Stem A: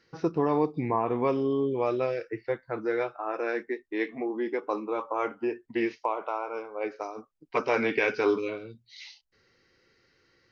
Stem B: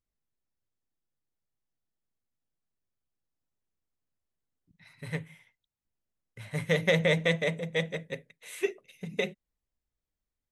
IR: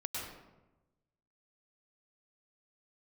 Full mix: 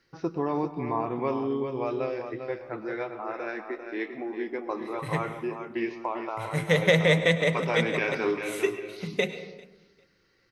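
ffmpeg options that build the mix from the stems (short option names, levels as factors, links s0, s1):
-filter_complex "[0:a]bandreject=f=470:w=12,volume=0.631,asplit=3[s0][s1][s2];[s1]volume=0.282[s3];[s2]volume=0.473[s4];[1:a]volume=1.26,asplit=3[s5][s6][s7];[s6]volume=0.335[s8];[s7]volume=0.0668[s9];[2:a]atrim=start_sample=2205[s10];[s3][s8]amix=inputs=2:normalize=0[s11];[s11][s10]afir=irnorm=-1:irlink=0[s12];[s4][s9]amix=inputs=2:normalize=0,aecho=0:1:397|794|1191|1588:1|0.22|0.0484|0.0106[s13];[s0][s5][s12][s13]amix=inputs=4:normalize=0"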